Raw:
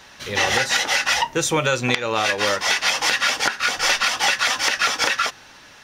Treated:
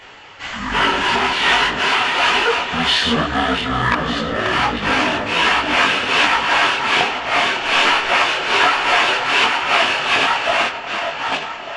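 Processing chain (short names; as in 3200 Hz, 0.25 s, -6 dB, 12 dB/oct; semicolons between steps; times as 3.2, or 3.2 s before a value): regenerating reverse delay 0.297 s, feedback 41%, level -6 dB; high shelf 2500 Hz +11 dB; in parallel at -3.5 dB: overloaded stage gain 20 dB; on the sum: wide varispeed 0.496×; high shelf 10000 Hz -5 dB; on a send: darkening echo 0.28 s, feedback 83%, low-pass 2400 Hz, level -15 dB; on the sum: detuned doubles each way 43 cents; gain -1 dB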